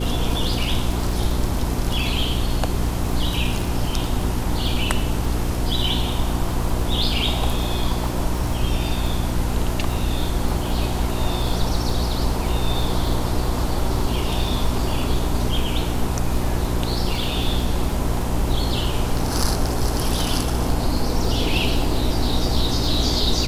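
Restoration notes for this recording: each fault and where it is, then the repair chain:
surface crackle 31 per second −26 dBFS
mains hum 60 Hz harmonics 6 −25 dBFS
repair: click removal
hum removal 60 Hz, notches 6

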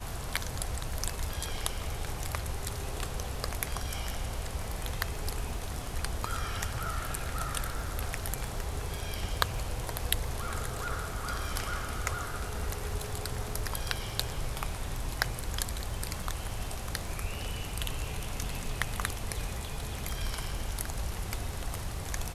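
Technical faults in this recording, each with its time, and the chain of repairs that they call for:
surface crackle 36 per second −41 dBFS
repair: click removal

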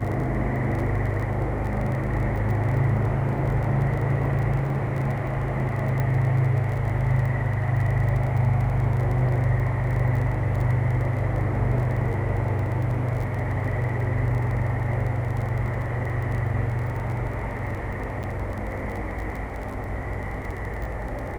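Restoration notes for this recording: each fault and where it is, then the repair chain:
surface crackle 24 per second −31 dBFS
0:06.00: click −16 dBFS
0:18.23–0:18.24: drop-out 8 ms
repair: click removal
repair the gap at 0:18.23, 8 ms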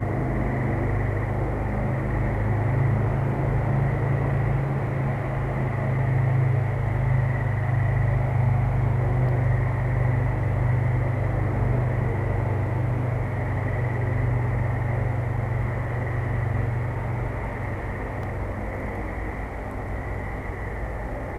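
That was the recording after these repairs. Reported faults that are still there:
0:06.00: click

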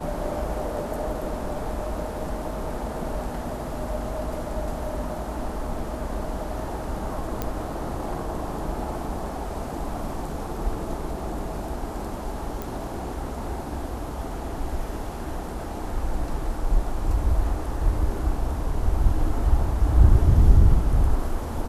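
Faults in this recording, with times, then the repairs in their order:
0:07.42: click −12 dBFS
0:12.62: click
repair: click removal

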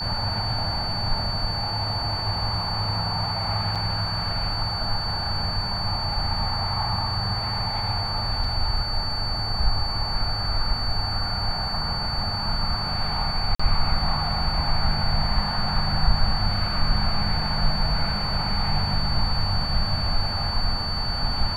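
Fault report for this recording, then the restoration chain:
whistle 4,500 Hz −28 dBFS
0:03.75–0:03.76: drop-out 6 ms
0:08.44: drop-out 3.8 ms
0:13.55–0:13.60: drop-out 45 ms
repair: notch filter 4,500 Hz, Q 30
repair the gap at 0:03.75, 6 ms
repair the gap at 0:08.44, 3.8 ms
repair the gap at 0:13.55, 45 ms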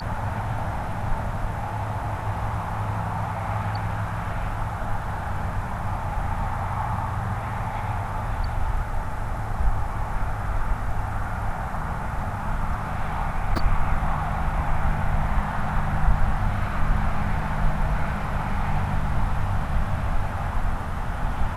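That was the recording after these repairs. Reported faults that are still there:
none of them is left

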